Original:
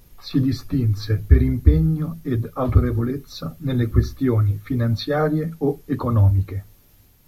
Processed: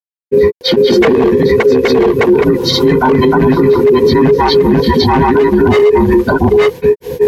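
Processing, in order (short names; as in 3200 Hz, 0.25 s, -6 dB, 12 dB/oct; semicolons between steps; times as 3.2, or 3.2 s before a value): band inversion scrambler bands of 500 Hz; reverb RT60 0.50 s, pre-delay 5 ms, DRR 9.5 dB; wavefolder -12 dBFS; HPF 44 Hz; grains 0.147 s, grains 16/s, spray 0.985 s, pitch spread up and down by 0 st; Butterworth band-stop 1300 Hz, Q 5; low shelf 350 Hz -7 dB; compressor, threshold -30 dBFS, peak gain reduction 10.5 dB; high shelf 4600 Hz -11.5 dB; maximiser +32.5 dB; gain -1 dB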